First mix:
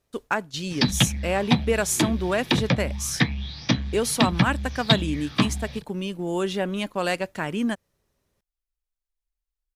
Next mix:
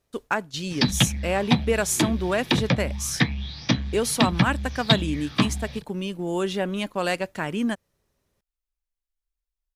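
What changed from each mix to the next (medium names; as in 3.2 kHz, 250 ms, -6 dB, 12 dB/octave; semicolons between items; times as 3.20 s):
no change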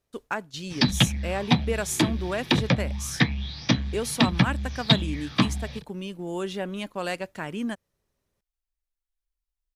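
speech -5.0 dB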